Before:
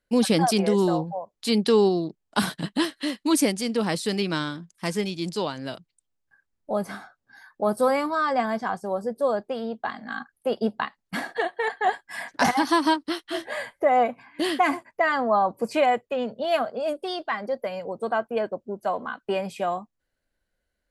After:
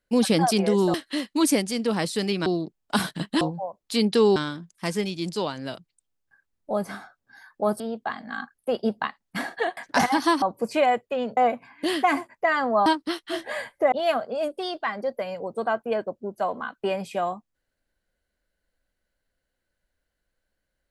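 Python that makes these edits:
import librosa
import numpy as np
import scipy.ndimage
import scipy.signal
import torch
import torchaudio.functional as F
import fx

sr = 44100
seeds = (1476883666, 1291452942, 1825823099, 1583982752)

y = fx.edit(x, sr, fx.swap(start_s=0.94, length_s=0.95, other_s=2.84, other_length_s=1.52),
    fx.cut(start_s=7.8, length_s=1.78),
    fx.cut(start_s=11.55, length_s=0.67),
    fx.swap(start_s=12.87, length_s=1.06, other_s=15.42, other_length_s=0.95), tone=tone)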